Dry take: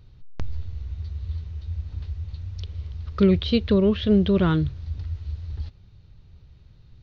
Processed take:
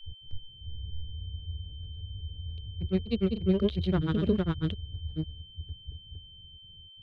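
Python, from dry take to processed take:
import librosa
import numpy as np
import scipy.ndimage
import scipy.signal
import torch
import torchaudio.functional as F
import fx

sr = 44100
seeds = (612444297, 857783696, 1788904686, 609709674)

y = fx.wiener(x, sr, points=41)
y = fx.granulator(y, sr, seeds[0], grain_ms=100.0, per_s=20.0, spray_ms=661.0, spread_st=0)
y = fx.rotary(y, sr, hz=7.0)
y = y + 10.0 ** (-46.0 / 20.0) * np.sin(2.0 * np.pi * 3100.0 * np.arange(len(y)) / sr)
y = y * 10.0 ** (-3.5 / 20.0)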